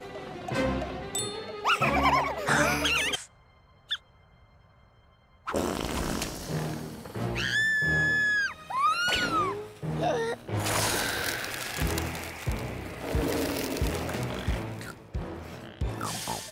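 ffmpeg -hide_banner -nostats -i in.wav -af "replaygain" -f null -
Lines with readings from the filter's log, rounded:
track_gain = +8.9 dB
track_peak = 0.203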